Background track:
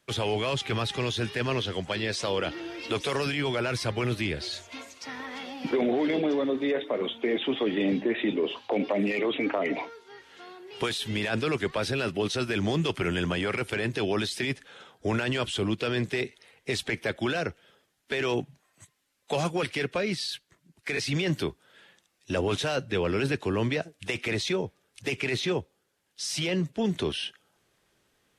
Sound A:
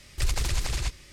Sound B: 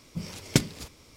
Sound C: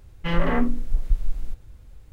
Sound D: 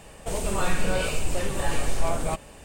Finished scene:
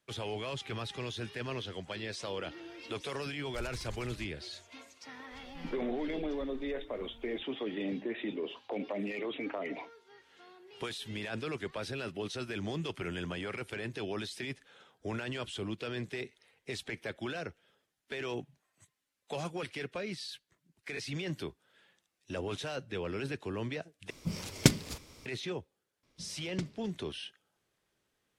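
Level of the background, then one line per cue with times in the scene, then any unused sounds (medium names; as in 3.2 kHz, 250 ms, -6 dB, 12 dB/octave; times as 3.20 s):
background track -10 dB
3.36 s: add A -17 dB + reverb removal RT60 0.87 s
5.31 s: add C -11.5 dB + compression 3:1, threshold -37 dBFS
24.10 s: replace with B -0.5 dB
26.03 s: add B -16.5 dB + Bessel low-pass 4.3 kHz
not used: D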